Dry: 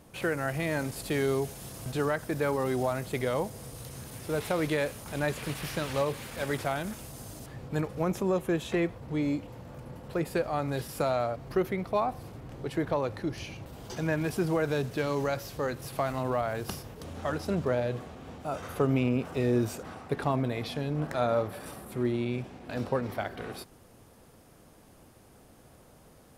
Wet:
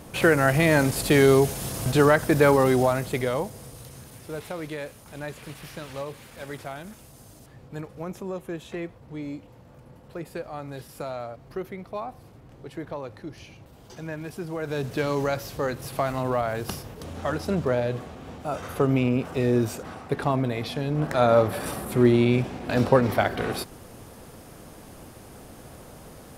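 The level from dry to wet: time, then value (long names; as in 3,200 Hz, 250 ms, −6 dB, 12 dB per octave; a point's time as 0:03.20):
0:02.51 +11 dB
0:03.44 +2 dB
0:04.62 −5.5 dB
0:14.51 −5.5 dB
0:14.92 +4 dB
0:20.81 +4 dB
0:21.59 +11 dB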